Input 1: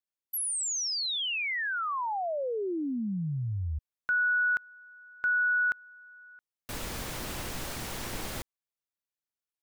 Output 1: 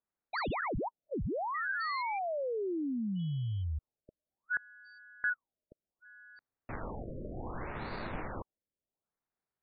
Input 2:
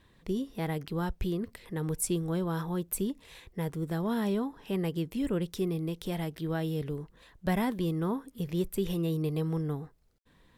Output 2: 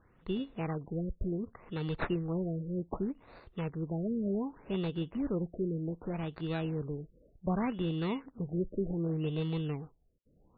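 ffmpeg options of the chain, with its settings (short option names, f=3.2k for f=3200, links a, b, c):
-af "acrusher=samples=14:mix=1:aa=0.000001,afftfilt=real='re*lt(b*sr/1024,600*pow(4800/600,0.5+0.5*sin(2*PI*0.66*pts/sr)))':imag='im*lt(b*sr/1024,600*pow(4800/600,0.5+0.5*sin(2*PI*0.66*pts/sr)))':win_size=1024:overlap=0.75,volume=-2.5dB"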